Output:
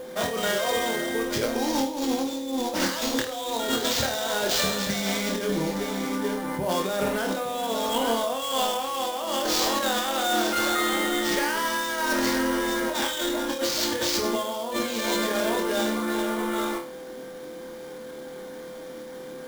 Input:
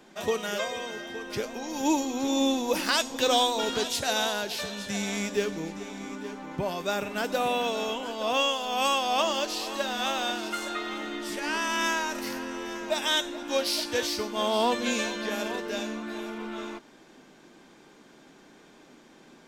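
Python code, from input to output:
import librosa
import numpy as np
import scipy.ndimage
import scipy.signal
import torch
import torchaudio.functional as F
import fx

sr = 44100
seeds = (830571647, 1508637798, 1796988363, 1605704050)

y = fx.notch(x, sr, hz=2600.0, q=5.2)
y = fx.over_compress(y, sr, threshold_db=-33.0, ratio=-1.0)
y = y + 10.0 ** (-39.0 / 20.0) * np.sin(2.0 * np.pi * 510.0 * np.arange(len(y)) / sr)
y = fx.room_flutter(y, sr, wall_m=4.5, rt60_s=0.34)
y = fx.sample_hold(y, sr, seeds[0], rate_hz=11000.0, jitter_pct=20)
y = F.gain(torch.from_numpy(y), 5.0).numpy()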